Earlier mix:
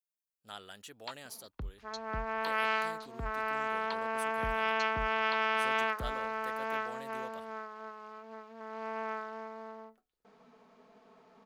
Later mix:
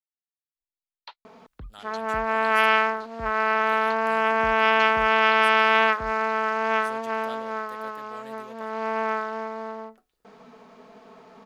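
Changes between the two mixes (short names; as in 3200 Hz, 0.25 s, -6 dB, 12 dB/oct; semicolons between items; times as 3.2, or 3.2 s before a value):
speech: entry +1.25 s; second sound +11.5 dB; reverb: off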